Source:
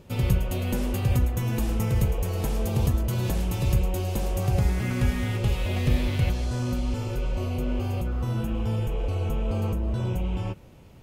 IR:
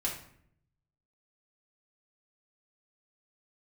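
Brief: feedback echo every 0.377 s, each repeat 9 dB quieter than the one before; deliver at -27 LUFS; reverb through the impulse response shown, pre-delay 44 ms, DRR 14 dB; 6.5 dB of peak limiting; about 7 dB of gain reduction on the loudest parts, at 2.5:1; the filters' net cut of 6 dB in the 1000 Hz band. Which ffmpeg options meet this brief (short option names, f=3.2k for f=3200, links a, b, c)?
-filter_complex "[0:a]equalizer=f=1k:t=o:g=-8.5,acompressor=threshold=-28dB:ratio=2.5,alimiter=limit=-23.5dB:level=0:latency=1,aecho=1:1:377|754|1131|1508:0.355|0.124|0.0435|0.0152,asplit=2[a][b];[1:a]atrim=start_sample=2205,adelay=44[c];[b][c]afir=irnorm=-1:irlink=0,volume=-18dB[d];[a][d]amix=inputs=2:normalize=0,volume=5dB"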